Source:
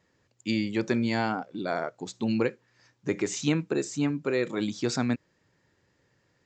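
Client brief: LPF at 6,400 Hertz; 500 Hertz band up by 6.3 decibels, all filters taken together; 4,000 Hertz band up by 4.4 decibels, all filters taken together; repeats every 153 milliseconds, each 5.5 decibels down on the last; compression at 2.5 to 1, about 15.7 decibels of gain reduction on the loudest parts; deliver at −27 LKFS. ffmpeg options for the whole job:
ffmpeg -i in.wav -af "lowpass=6400,equalizer=frequency=500:width_type=o:gain=8,equalizer=frequency=4000:width_type=o:gain=6,acompressor=threshold=-42dB:ratio=2.5,aecho=1:1:153|306|459|612|765|918|1071:0.531|0.281|0.149|0.079|0.0419|0.0222|0.0118,volume=11.5dB" out.wav

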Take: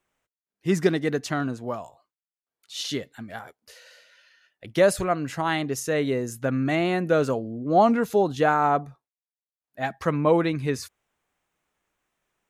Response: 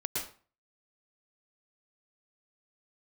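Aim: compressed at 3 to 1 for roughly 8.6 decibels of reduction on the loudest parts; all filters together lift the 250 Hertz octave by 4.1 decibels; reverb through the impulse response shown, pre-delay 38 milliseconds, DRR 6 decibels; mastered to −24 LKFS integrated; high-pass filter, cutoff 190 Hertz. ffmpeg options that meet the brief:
-filter_complex "[0:a]highpass=190,equalizer=frequency=250:width_type=o:gain=7,acompressor=threshold=-24dB:ratio=3,asplit=2[link_01][link_02];[1:a]atrim=start_sample=2205,adelay=38[link_03];[link_02][link_03]afir=irnorm=-1:irlink=0,volume=-10.5dB[link_04];[link_01][link_04]amix=inputs=2:normalize=0,volume=3dB"

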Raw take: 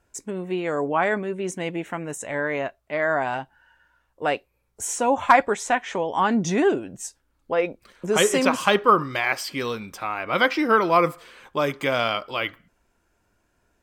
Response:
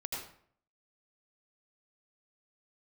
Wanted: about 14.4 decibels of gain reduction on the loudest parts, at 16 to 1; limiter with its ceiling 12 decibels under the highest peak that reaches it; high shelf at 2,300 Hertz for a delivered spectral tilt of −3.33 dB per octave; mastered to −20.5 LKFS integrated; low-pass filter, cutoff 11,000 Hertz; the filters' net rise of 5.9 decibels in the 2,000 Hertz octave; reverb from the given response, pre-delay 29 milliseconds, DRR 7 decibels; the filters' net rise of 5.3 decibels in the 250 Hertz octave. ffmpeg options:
-filter_complex "[0:a]lowpass=11000,equalizer=frequency=250:width_type=o:gain=6.5,equalizer=frequency=2000:width_type=o:gain=3.5,highshelf=frequency=2300:gain=8,acompressor=threshold=-22dB:ratio=16,alimiter=limit=-20dB:level=0:latency=1,asplit=2[link_01][link_02];[1:a]atrim=start_sample=2205,adelay=29[link_03];[link_02][link_03]afir=irnorm=-1:irlink=0,volume=-8.5dB[link_04];[link_01][link_04]amix=inputs=2:normalize=0,volume=9dB"

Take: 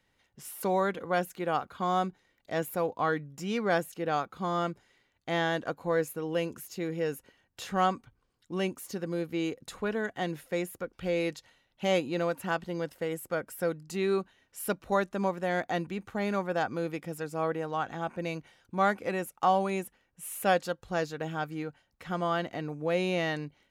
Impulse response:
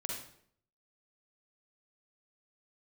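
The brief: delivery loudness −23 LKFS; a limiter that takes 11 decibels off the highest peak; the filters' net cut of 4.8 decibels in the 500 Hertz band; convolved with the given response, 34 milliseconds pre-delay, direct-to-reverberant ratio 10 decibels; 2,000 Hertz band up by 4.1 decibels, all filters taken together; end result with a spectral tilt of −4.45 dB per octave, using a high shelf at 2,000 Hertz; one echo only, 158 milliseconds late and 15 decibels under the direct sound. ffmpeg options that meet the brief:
-filter_complex "[0:a]equalizer=frequency=500:width_type=o:gain=-6.5,highshelf=frequency=2000:gain=4,equalizer=frequency=2000:width_type=o:gain=3.5,alimiter=limit=-23dB:level=0:latency=1,aecho=1:1:158:0.178,asplit=2[link_01][link_02];[1:a]atrim=start_sample=2205,adelay=34[link_03];[link_02][link_03]afir=irnorm=-1:irlink=0,volume=-11dB[link_04];[link_01][link_04]amix=inputs=2:normalize=0,volume=11.5dB"

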